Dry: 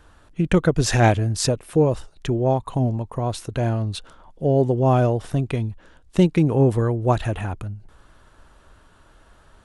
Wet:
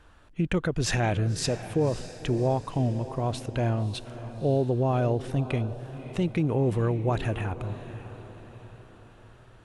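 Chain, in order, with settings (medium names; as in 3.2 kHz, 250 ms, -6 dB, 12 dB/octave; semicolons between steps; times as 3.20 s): treble shelf 7.4 kHz -5.5 dB; peak limiter -13 dBFS, peak gain reduction 8.5 dB; peaking EQ 2.5 kHz +3.5 dB 0.81 oct; echo that smears into a reverb 580 ms, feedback 48%, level -13 dB; trim -4 dB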